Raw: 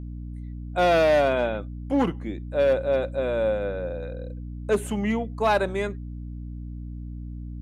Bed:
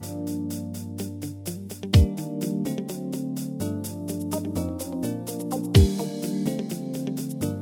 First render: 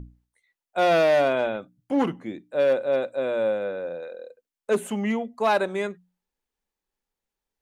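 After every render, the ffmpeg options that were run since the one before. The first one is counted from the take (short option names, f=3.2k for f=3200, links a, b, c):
-af "bandreject=f=60:t=h:w=6,bandreject=f=120:t=h:w=6,bandreject=f=180:t=h:w=6,bandreject=f=240:t=h:w=6,bandreject=f=300:t=h:w=6"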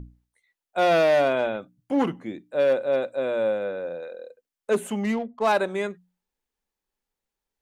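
-filter_complex "[0:a]asettb=1/sr,asplit=3[a][b][c];[a]atrim=end=5.044[d];[b]atrim=start=5.04:end=5.52,asetpts=PTS-STARTPTS,afade=t=in:d=0.004:c=qsin,afade=t=out:st=0.476:d=0.004:c=qsin,adynamicsmooth=sensitivity=6.5:basefreq=1.2k[e];[c]atrim=start=5.516[f];[d][e]acrossfade=d=0.004:c1=hsin:c2=qsin[g];[g][f]acrossfade=d=0.004:c1=qsin:c2=hsin"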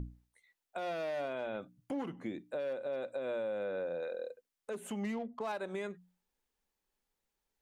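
-af "acompressor=threshold=-30dB:ratio=6,alimiter=level_in=5dB:limit=-24dB:level=0:latency=1:release=294,volume=-5dB"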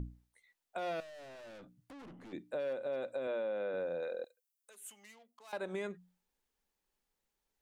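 -filter_complex "[0:a]asettb=1/sr,asplit=3[a][b][c];[a]atrim=end=1.004[d];[b]atrim=start=1:end=2.33,asetpts=PTS-STARTPTS,afade=t=in:d=0.004:c=qsin,afade=t=out:st=1.326:d=0.004:c=qsin,aeval=exprs='(tanh(316*val(0)+0.2)-tanh(0.2))/316':c=same[e];[c]atrim=start=2.326[f];[d][e]acrossfade=d=0.004:c1=hsin:c2=qsin[g];[g][f]acrossfade=d=0.004:c1=qsin:c2=hsin,asettb=1/sr,asplit=3[h][i][j];[h]atrim=end=3.274[k];[i]atrim=start=3.27:end=3.74,asetpts=PTS-STARTPTS,afade=t=in:d=0.004:c=qsin,afade=t=out:st=0.466:d=0.004:c=qsin,highpass=210,lowpass=5.2k[l];[j]atrim=start=3.736[m];[k][l]acrossfade=d=0.004:c1=hsin:c2=qsin[n];[n][m]acrossfade=d=0.004:c1=qsin:c2=hsin,asettb=1/sr,asplit=3[o][p][q];[o]atrim=end=4.244[r];[p]atrim=start=4.24:end=5.53,asetpts=PTS-STARTPTS,afade=t=in:d=0.004:c=qsin,afade=t=out:st=1.286:d=0.004:c=qsin,aderivative[s];[q]atrim=start=5.526[t];[r][s]acrossfade=d=0.004:c1=hsin:c2=qsin[u];[u][t]acrossfade=d=0.004:c1=qsin:c2=hsin"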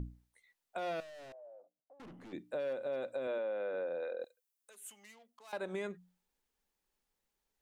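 -filter_complex "[0:a]asettb=1/sr,asplit=3[a][b][c];[a]atrim=end=1.324[d];[b]atrim=start=1.32:end=2,asetpts=PTS-STARTPTS,afade=t=in:d=0.004:c=qsin,afade=t=out:st=0.676:d=0.004:c=qsin,asuperpass=centerf=620:order=4:qfactor=2.6[e];[c]atrim=start=1.996[f];[d][e]acrossfade=d=0.004:c1=hsin:c2=qsin[g];[g][f]acrossfade=d=0.004:c1=qsin:c2=hsin,asettb=1/sr,asplit=3[h][i][j];[h]atrim=end=3.384[k];[i]atrim=start=3.38:end=4.21,asetpts=PTS-STARTPTS,afade=t=in:d=0.004:c=qsin,afade=t=out:st=0.826:d=0.004:c=qsin,highpass=280,lowpass=3.4k[l];[j]atrim=start=4.206[m];[k][l]acrossfade=d=0.004:c1=hsin:c2=qsin[n];[n][m]acrossfade=d=0.004:c1=qsin:c2=hsin"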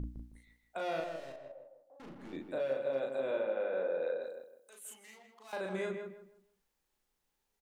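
-filter_complex "[0:a]asplit=2[a][b];[b]adelay=37,volume=-2.5dB[c];[a][c]amix=inputs=2:normalize=0,asplit=2[d][e];[e]adelay=158,lowpass=f=2k:p=1,volume=-5.5dB,asplit=2[f][g];[g]adelay=158,lowpass=f=2k:p=1,volume=0.29,asplit=2[h][i];[i]adelay=158,lowpass=f=2k:p=1,volume=0.29,asplit=2[j][k];[k]adelay=158,lowpass=f=2k:p=1,volume=0.29[l];[d][f][h][j][l]amix=inputs=5:normalize=0"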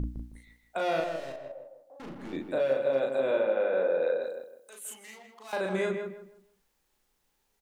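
-af "volume=7.5dB"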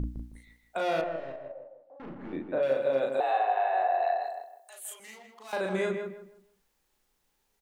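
-filter_complex "[0:a]asettb=1/sr,asplit=3[a][b][c];[a]atrim=end=1.014[d];[b]atrim=start=1.01:end=2.63,asetpts=PTS-STARTPTS,afade=t=in:d=0.004:c=qsin,afade=t=out:st=1.616:d=0.004:c=qsin,lowpass=2.1k[e];[c]atrim=start=2.626[f];[d][e]acrossfade=d=0.004:c1=hsin:c2=qsin[g];[g][f]acrossfade=d=0.004:c1=qsin:c2=hsin,asettb=1/sr,asplit=3[h][i][j];[h]atrim=end=3.204[k];[i]atrim=start=3.2:end=5,asetpts=PTS-STARTPTS,afade=t=in:d=0.004:c=qsin,afade=t=out:st=1.796:d=0.004:c=qsin,afreqshift=190[l];[j]atrim=start=4.996[m];[k][l]acrossfade=d=0.004:c1=hsin:c2=qsin[n];[n][m]acrossfade=d=0.004:c1=qsin:c2=hsin"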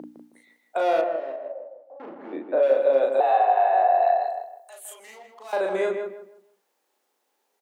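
-af "highpass=f=260:w=0.5412,highpass=f=260:w=1.3066,equalizer=f=630:t=o:w=1.8:g=8"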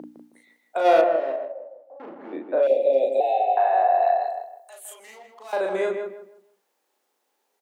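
-filter_complex "[0:a]asplit=3[a][b][c];[a]afade=t=out:st=0.84:d=0.02[d];[b]acontrast=44,afade=t=in:st=0.84:d=0.02,afade=t=out:st=1.44:d=0.02[e];[c]afade=t=in:st=1.44:d=0.02[f];[d][e][f]amix=inputs=3:normalize=0,asettb=1/sr,asplit=3[g][h][i];[g]atrim=end=2.674[j];[h]atrim=start=2.67:end=3.57,asetpts=PTS-STARTPTS,afade=t=in:d=0.004:c=qsin,afade=t=out:st=0.896:d=0.004:c=qsin,asuperstop=centerf=1300:order=8:qfactor=0.89[k];[i]atrim=start=3.566[l];[j][k]acrossfade=d=0.004:c1=hsin:c2=qsin[m];[m][l]acrossfade=d=0.004:c1=qsin:c2=hsin"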